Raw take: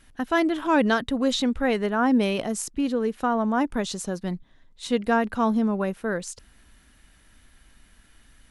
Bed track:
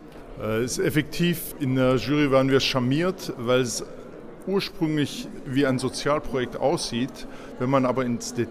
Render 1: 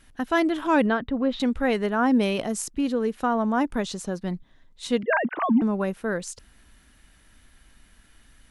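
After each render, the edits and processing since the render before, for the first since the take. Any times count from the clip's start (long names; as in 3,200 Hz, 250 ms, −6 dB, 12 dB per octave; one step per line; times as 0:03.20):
0:00.86–0:01.40: high-frequency loss of the air 410 metres
0:03.83–0:04.34: high-shelf EQ 5,200 Hz −5.5 dB
0:05.03–0:05.62: three sine waves on the formant tracks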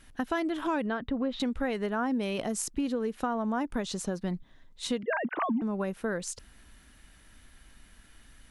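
downward compressor 6 to 1, threshold −27 dBFS, peak gain reduction 11.5 dB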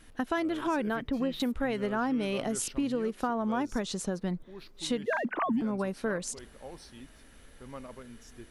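mix in bed track −23 dB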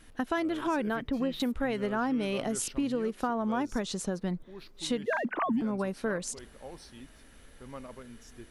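no processing that can be heard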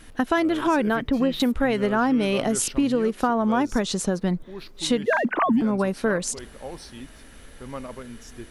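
level +8.5 dB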